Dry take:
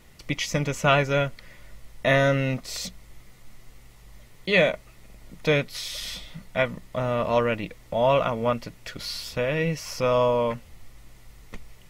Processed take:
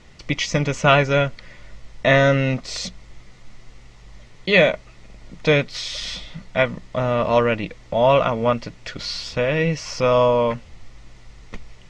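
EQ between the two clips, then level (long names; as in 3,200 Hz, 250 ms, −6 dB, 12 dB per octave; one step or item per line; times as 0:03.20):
low-pass filter 6,800 Hz 24 dB per octave
+5.0 dB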